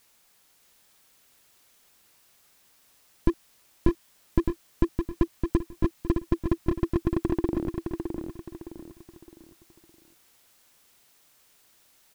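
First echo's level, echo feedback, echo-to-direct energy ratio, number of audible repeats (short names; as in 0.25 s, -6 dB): -5.5 dB, 36%, -5.0 dB, 4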